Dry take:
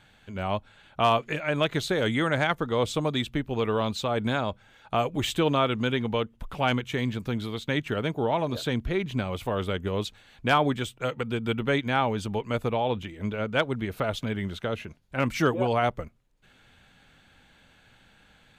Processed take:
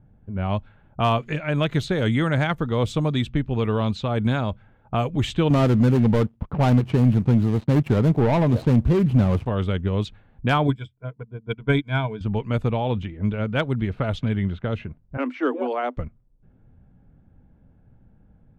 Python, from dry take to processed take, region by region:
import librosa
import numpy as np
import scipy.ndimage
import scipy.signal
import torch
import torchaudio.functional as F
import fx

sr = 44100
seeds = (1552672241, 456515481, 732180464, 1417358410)

y = fx.chain(x, sr, fx.median_filter(points=25),
    fx.highpass(hz=82.0, slope=12),
    fx.leveller(passes=2), at=(5.5, 9.46))
y = fx.chain(y, sr, fx.ripple_eq(per_octave=1.7, db=13),
    fx.upward_expand(threshold_db=-36.0, expansion=2.5), at=(10.67, 12.21))
y = fx.chain(y, sr, fx.cheby1_highpass(hz=250.0, order=8),
    fx.high_shelf(hz=3200.0, db=-12.0), at=(15.17, 15.97))
y = fx.env_lowpass(y, sr, base_hz=520.0, full_db=-22.5)
y = fx.bass_treble(y, sr, bass_db=10, treble_db=-3)